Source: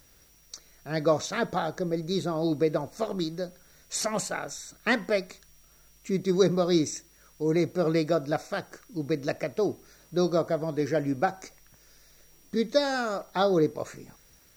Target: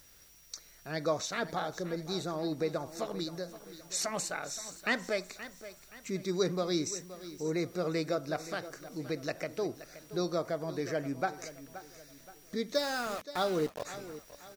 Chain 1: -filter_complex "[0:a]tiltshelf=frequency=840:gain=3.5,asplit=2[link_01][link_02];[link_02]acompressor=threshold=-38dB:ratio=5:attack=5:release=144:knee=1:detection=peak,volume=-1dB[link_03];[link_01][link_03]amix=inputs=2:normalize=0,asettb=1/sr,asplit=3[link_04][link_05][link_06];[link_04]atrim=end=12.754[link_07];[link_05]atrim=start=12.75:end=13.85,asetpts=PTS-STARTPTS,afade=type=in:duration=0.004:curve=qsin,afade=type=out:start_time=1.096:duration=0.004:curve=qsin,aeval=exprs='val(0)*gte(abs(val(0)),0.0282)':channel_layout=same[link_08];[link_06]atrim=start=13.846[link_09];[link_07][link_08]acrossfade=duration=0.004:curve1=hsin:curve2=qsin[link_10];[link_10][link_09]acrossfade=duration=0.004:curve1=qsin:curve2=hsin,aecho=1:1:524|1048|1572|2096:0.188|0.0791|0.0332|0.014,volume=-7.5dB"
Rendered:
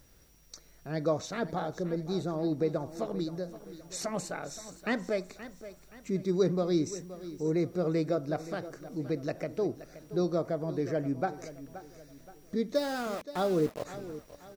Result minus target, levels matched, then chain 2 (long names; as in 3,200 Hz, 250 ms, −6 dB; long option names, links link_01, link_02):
1,000 Hz band −2.5 dB
-filter_complex "[0:a]tiltshelf=frequency=840:gain=-3,asplit=2[link_01][link_02];[link_02]acompressor=threshold=-38dB:ratio=5:attack=5:release=144:knee=1:detection=peak,volume=-1dB[link_03];[link_01][link_03]amix=inputs=2:normalize=0,asettb=1/sr,asplit=3[link_04][link_05][link_06];[link_04]atrim=end=12.754[link_07];[link_05]atrim=start=12.75:end=13.85,asetpts=PTS-STARTPTS,afade=type=in:duration=0.004:curve=qsin,afade=type=out:start_time=1.096:duration=0.004:curve=qsin,aeval=exprs='val(0)*gte(abs(val(0)),0.0282)':channel_layout=same[link_08];[link_06]atrim=start=13.846[link_09];[link_07][link_08]acrossfade=duration=0.004:curve1=hsin:curve2=qsin[link_10];[link_10][link_09]acrossfade=duration=0.004:curve1=qsin:curve2=hsin,aecho=1:1:524|1048|1572|2096:0.188|0.0791|0.0332|0.014,volume=-7.5dB"